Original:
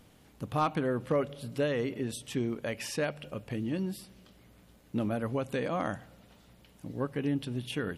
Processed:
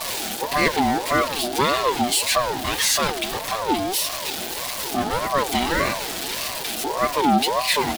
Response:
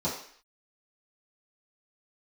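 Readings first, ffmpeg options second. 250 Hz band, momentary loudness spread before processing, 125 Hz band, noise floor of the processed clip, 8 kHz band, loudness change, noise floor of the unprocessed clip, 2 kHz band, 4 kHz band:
+7.0 dB, 11 LU, +1.0 dB, -30 dBFS, +23.0 dB, +11.5 dB, -60 dBFS, +16.0 dB, +21.5 dB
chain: -af "aeval=exprs='val(0)+0.5*0.0168*sgn(val(0))':c=same,equalizer=f=250:t=o:w=1:g=10,equalizer=f=500:t=o:w=1:g=-7,equalizer=f=4k:t=o:w=1:g=9,asoftclip=type=tanh:threshold=-19.5dB,equalizer=f=1k:t=o:w=1.1:g=9.5,aecho=1:1:7.1:0.88,aexciter=amount=1.4:drive=9.2:freq=2.5k,aeval=exprs='val(0)*sin(2*PI*690*n/s+690*0.3/1.7*sin(2*PI*1.7*n/s))':c=same,volume=4.5dB"

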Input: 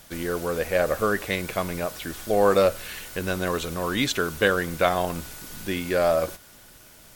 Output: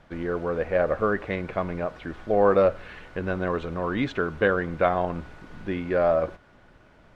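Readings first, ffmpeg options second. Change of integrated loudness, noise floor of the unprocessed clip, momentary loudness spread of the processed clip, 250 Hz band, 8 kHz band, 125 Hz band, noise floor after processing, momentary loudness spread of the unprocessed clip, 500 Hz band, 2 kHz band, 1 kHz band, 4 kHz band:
-0.5 dB, -50 dBFS, 12 LU, 0.0 dB, under -25 dB, 0.0 dB, -55 dBFS, 12 LU, 0.0 dB, -3.0 dB, -0.5 dB, -13.0 dB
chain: -af "lowpass=1.7k"

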